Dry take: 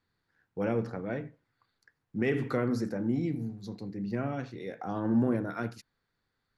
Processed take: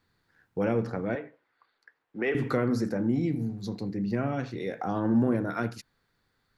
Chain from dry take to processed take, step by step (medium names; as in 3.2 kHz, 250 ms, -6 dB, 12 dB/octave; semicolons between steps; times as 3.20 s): 1.15–2.35 s: three-band isolator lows -22 dB, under 330 Hz, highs -15 dB, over 3.9 kHz; in parallel at +2 dB: compression, threshold -36 dBFS, peak gain reduction 14 dB